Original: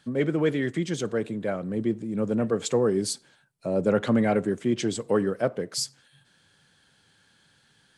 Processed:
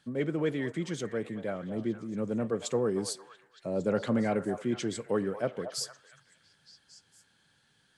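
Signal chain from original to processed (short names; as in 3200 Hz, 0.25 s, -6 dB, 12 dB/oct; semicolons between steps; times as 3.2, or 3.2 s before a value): delay with a stepping band-pass 0.229 s, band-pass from 810 Hz, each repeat 0.7 oct, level -7 dB; gain -6 dB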